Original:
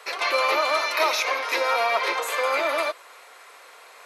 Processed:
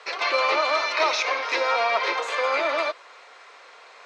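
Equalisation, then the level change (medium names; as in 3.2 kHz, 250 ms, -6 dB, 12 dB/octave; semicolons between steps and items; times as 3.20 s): low-pass 6.2 kHz 24 dB/octave; 0.0 dB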